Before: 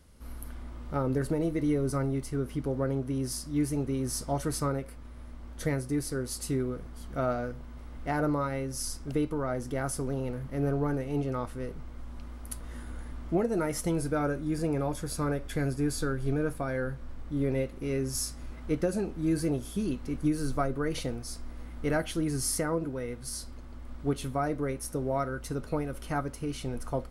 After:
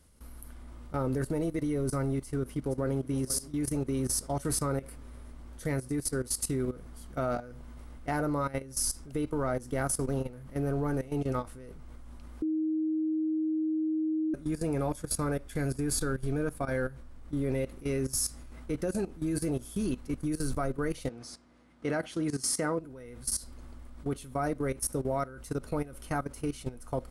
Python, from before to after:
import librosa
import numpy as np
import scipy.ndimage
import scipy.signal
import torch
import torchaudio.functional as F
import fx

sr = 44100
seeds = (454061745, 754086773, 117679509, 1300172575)

y = fx.echo_throw(x, sr, start_s=2.19, length_s=0.93, ms=470, feedback_pct=60, wet_db=-15.0)
y = fx.bandpass_edges(y, sr, low_hz=140.0, high_hz=fx.line((21.08, 5200.0), (22.78, 8000.0)), at=(21.08, 22.78), fade=0.02)
y = fx.edit(y, sr, fx.bleep(start_s=12.42, length_s=1.92, hz=314.0, db=-17.0), tone=tone)
y = fx.peak_eq(y, sr, hz=9600.0, db=7.0, octaves=1.0)
y = fx.level_steps(y, sr, step_db=16)
y = y * librosa.db_to_amplitude(2.5)